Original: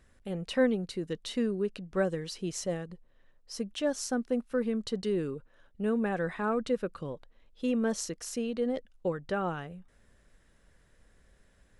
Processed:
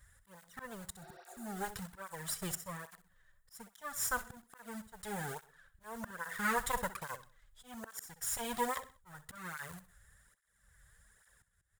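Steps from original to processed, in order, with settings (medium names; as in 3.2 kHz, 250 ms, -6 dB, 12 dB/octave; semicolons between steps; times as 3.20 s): comb filter that takes the minimum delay 0.57 ms; in parallel at -6.5 dB: bit crusher 7-bit; on the sum: amplifier tone stack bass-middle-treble 10-0-10; slow attack 504 ms; high-order bell 3.6 kHz -10 dB; on a send: feedback delay 64 ms, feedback 34%, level -14 dB; on the sum: spectral replace 1.04–1.43 s, 360–6000 Hz before; cancelling through-zero flanger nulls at 1.2 Hz, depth 4.7 ms; trim +13 dB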